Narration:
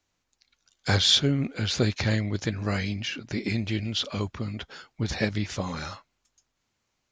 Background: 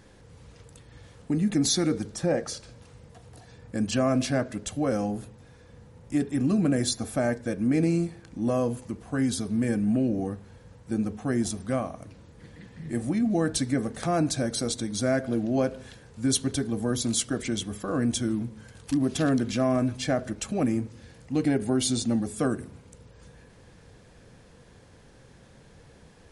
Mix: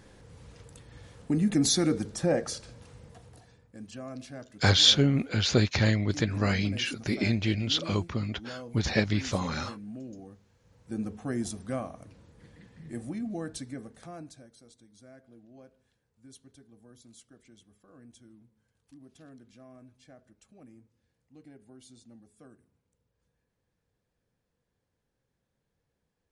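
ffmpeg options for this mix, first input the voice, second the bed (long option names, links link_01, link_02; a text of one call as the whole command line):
ffmpeg -i stem1.wav -i stem2.wav -filter_complex "[0:a]adelay=3750,volume=1dB[link_01];[1:a]volume=11dB,afade=type=out:start_time=3.08:duration=0.61:silence=0.149624,afade=type=in:start_time=10.59:duration=0.43:silence=0.266073,afade=type=out:start_time=12.28:duration=2.22:silence=0.0749894[link_02];[link_01][link_02]amix=inputs=2:normalize=0" out.wav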